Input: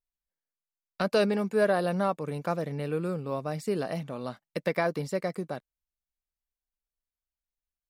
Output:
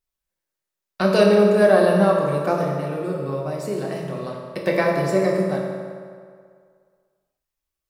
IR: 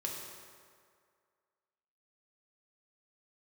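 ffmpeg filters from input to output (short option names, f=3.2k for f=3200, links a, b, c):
-filter_complex "[0:a]asettb=1/sr,asplit=3[a][b][c];[a]atrim=end=2.634[d];[b]atrim=start=2.63:end=4.64,asetpts=PTS-STARTPTS,afade=t=in:d=0.004:c=qsin,afade=t=out:st=2.006:d=0.004:c=qsin,acompressor=threshold=-35dB:ratio=2.5[e];[c]atrim=start=4.636[f];[d][e]acrossfade=d=0.004:c1=hsin:c2=qsin[g];[g][f]acrossfade=d=0.004:c1=qsin:c2=hsin[h];[1:a]atrim=start_sample=2205[i];[h][i]afir=irnorm=-1:irlink=0,volume=7.5dB"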